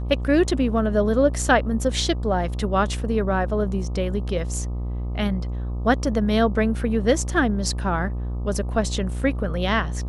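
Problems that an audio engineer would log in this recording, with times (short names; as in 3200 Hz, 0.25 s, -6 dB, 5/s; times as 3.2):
buzz 60 Hz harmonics 21 -27 dBFS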